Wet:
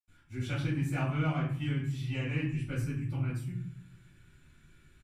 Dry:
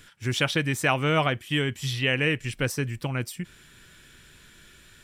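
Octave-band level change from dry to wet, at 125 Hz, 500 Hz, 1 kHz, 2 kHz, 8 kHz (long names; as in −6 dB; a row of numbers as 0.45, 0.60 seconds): −2.0 dB, −14.0 dB, −12.5 dB, −14.5 dB, below −15 dB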